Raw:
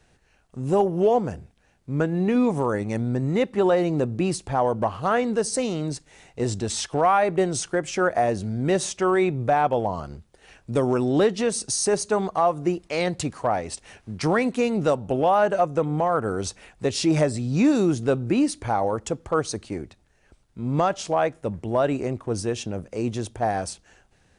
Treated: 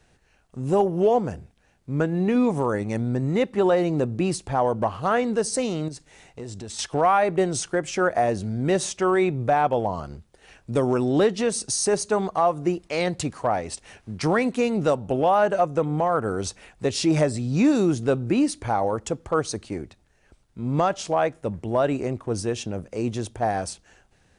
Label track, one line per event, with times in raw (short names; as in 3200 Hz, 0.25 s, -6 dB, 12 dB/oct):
5.880000	6.790000	compressor 4:1, threshold -34 dBFS